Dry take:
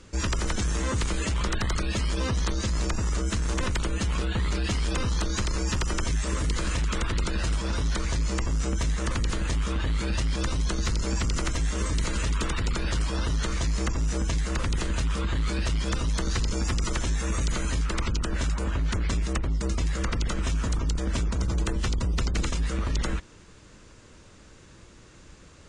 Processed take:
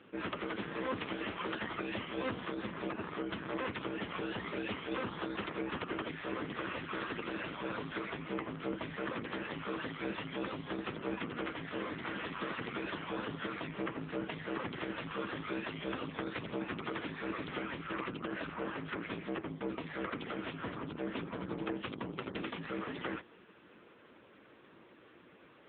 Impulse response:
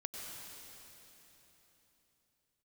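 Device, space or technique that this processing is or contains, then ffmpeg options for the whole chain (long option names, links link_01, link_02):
telephone: -af "highpass=260,lowpass=3500,asoftclip=type=tanh:threshold=-24.5dB" -ar 8000 -c:a libopencore_amrnb -b:a 6700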